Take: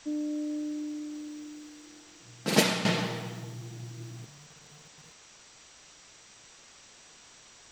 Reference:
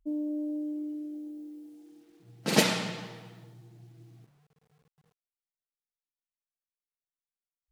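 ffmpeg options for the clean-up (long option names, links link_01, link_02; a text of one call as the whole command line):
ffmpeg -i in.wav -af "bandreject=frequency=5800:width=30,afwtdn=0.0028,asetnsamples=nb_out_samples=441:pad=0,asendcmd='2.85 volume volume -10.5dB',volume=0dB" out.wav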